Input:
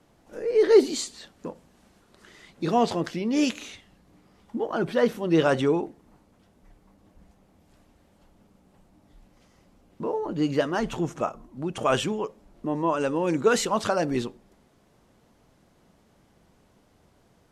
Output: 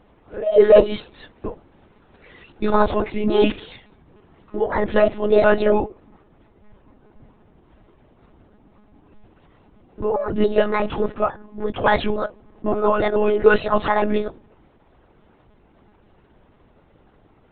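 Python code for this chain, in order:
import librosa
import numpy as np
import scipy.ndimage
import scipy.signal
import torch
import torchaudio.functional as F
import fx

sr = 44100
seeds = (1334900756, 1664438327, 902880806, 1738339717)

y = fx.pitch_trill(x, sr, semitones=5.0, every_ms=143)
y = fx.lpc_monotone(y, sr, seeds[0], pitch_hz=210.0, order=16)
y = fx.high_shelf(y, sr, hz=3000.0, db=-7.0)
y = y * librosa.db_to_amplitude(7.5)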